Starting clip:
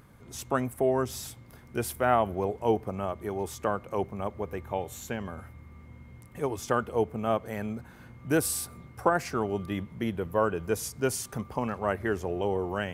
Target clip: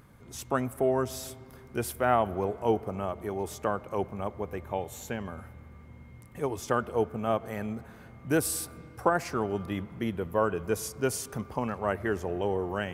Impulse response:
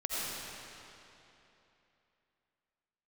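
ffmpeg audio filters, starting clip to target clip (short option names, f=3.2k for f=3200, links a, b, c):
-filter_complex "[0:a]asplit=2[a][b];[1:a]atrim=start_sample=2205,lowpass=3.1k[c];[b][c]afir=irnorm=-1:irlink=0,volume=-24.5dB[d];[a][d]amix=inputs=2:normalize=0,volume=-1dB"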